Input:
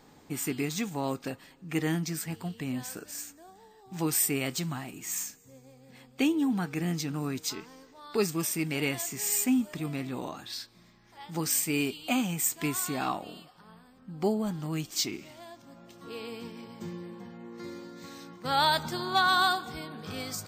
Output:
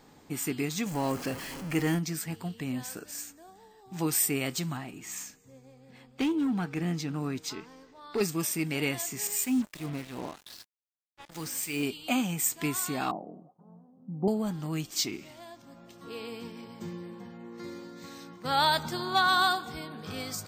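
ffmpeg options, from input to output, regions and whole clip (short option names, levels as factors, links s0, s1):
-filter_complex "[0:a]asettb=1/sr,asplit=3[s0][s1][s2];[s0]atrim=end=0.864[s3];[s1]atrim=start=0.86:end=1.99,asetpts=PTS-STARTPTS,afade=t=in:d=0.004:c=qsin,afade=t=out:st=1.126:d=0.004:c=qsin,aeval=exprs='val(0)+0.5*0.0178*sgn(val(0))':c=same,bandreject=f=3700:w=7[s4];[s2]atrim=start=1.986[s5];[s3][s4]acrossfade=d=0.004:c1=hsin:c2=qsin[s6];[s6][s5]acrossfade=d=0.004:c1=qsin:c2=hsin,asettb=1/sr,asplit=3[s7][s8][s9];[s7]atrim=end=4.774[s10];[s8]atrim=start=4.77:end=8.21,asetpts=PTS-STARTPTS,afade=t=in:d=0.004:c=qsin,afade=t=out:st=3.436:d=0.004:c=qsin,highshelf=f=6700:g=-10,asoftclip=type=hard:threshold=0.0631[s11];[s9]atrim=start=8.206[s12];[s10][s11]acrossfade=d=0.004:c1=hsin:c2=qsin[s13];[s13][s12]acrossfade=d=0.004:c1=qsin:c2=hsin,asettb=1/sr,asplit=3[s14][s15][s16];[s14]atrim=end=9.274[s17];[s15]atrim=start=9.27:end=11.83,asetpts=PTS-STARTPTS,afade=t=in:d=0.004:c=qsin,afade=t=out:st=2.556:d=0.004:c=qsin,acrossover=split=1500[s18][s19];[s18]aeval=exprs='val(0)*(1-0.7/2+0.7/2*cos(2*PI*3.1*n/s))':c=same[s20];[s19]aeval=exprs='val(0)*(1-0.7/2-0.7/2*cos(2*PI*3.1*n/s))':c=same[s21];[s20][s21]amix=inputs=2:normalize=0,acrusher=bits=6:mix=0:aa=0.5[s22];[s16]atrim=start=11.826[s23];[s17][s22]acrossfade=d=0.004:c1=hsin:c2=qsin[s24];[s24][s23]acrossfade=d=0.004:c1=qsin:c2=hsin,asettb=1/sr,asplit=3[s25][s26][s27];[s25]atrim=end=13.114[s28];[s26]atrim=start=13.11:end=14.28,asetpts=PTS-STARTPTS,afade=t=in:d=0.004:c=qsin,afade=t=out:st=1.166:d=0.004:c=qsin,asuperpass=centerf=340:order=8:qfactor=0.51,asubboost=boost=6:cutoff=220,agate=range=0.0224:threshold=0.00112:ratio=3:release=100:detection=peak[s29];[s27]atrim=start=14.276[s30];[s28][s29]acrossfade=d=0.004:c1=hsin:c2=qsin[s31];[s31][s30]acrossfade=d=0.004:c1=qsin:c2=hsin"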